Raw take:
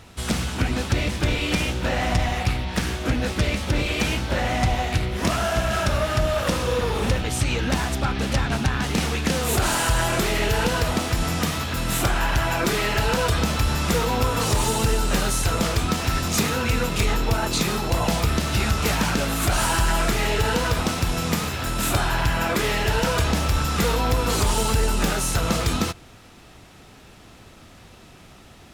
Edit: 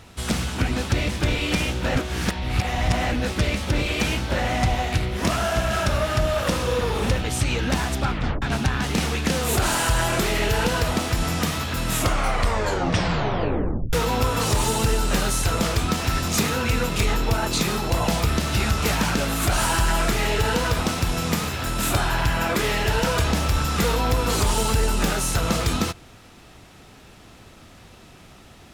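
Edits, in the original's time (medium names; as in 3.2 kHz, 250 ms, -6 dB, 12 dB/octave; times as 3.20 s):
1.95–3.12 s: reverse
8.10 s: tape stop 0.32 s
11.88 s: tape stop 2.05 s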